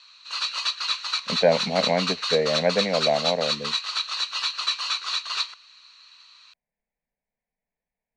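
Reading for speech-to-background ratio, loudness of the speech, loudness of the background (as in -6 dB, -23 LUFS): 1.0 dB, -24.5 LUFS, -25.5 LUFS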